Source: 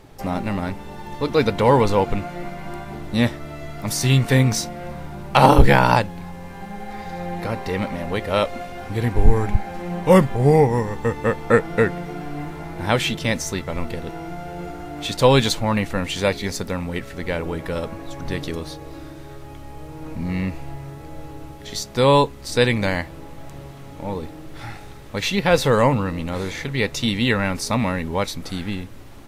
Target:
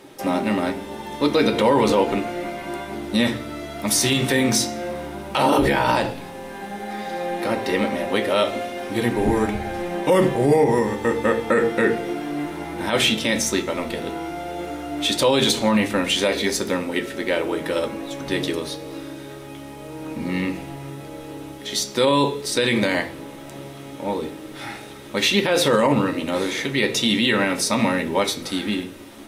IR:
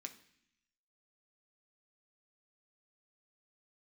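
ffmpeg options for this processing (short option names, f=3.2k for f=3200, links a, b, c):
-filter_complex "[1:a]atrim=start_sample=2205,asetrate=66150,aresample=44100[a];[0:a][a]afir=irnorm=-1:irlink=0,alimiter=level_in=20.5dB:limit=-1dB:release=50:level=0:latency=1,volume=-7dB"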